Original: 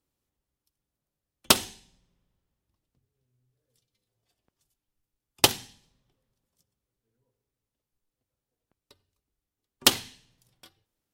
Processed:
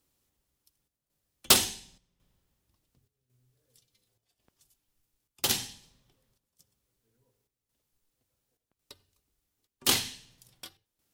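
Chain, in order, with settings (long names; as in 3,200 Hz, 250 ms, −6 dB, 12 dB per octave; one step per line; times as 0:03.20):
high-shelf EQ 2,700 Hz +6 dB
gain into a clipping stage and back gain 17 dB
square-wave tremolo 0.91 Hz, depth 65%, duty 80%
level +4 dB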